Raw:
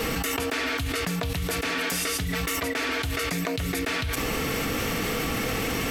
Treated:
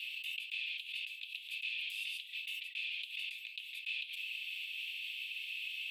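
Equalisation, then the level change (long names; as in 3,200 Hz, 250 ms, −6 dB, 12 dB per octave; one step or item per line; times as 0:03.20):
Chebyshev high-pass with heavy ripple 2,500 Hz, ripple 3 dB
high-frequency loss of the air 430 metres
parametric band 5,500 Hz −10.5 dB 0.78 octaves
+6.5 dB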